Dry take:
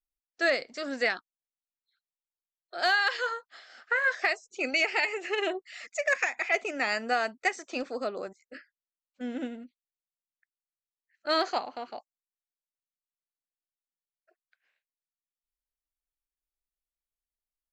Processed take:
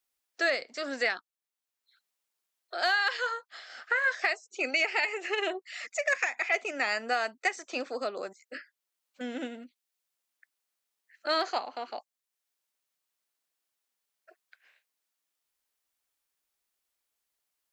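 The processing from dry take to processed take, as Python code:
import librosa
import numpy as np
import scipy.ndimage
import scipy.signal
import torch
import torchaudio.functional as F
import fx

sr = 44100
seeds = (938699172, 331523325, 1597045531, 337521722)

y = fx.highpass(x, sr, hz=410.0, slope=6)
y = fx.band_squash(y, sr, depth_pct=40)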